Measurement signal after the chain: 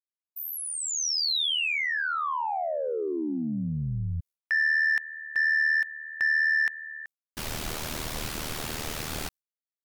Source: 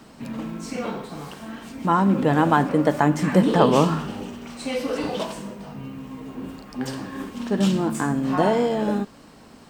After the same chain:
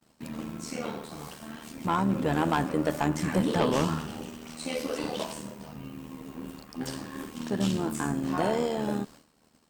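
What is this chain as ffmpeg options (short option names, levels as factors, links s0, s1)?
-filter_complex "[0:a]tremolo=f=77:d=0.71,acrossover=split=5600[s0][s1];[s1]acompressor=threshold=0.00794:ratio=4:attack=1:release=60[s2];[s0][s2]amix=inputs=2:normalize=0,asoftclip=type=tanh:threshold=0.2,agate=range=0.0224:threshold=0.00891:ratio=3:detection=peak,aemphasis=mode=production:type=cd,volume=0.75"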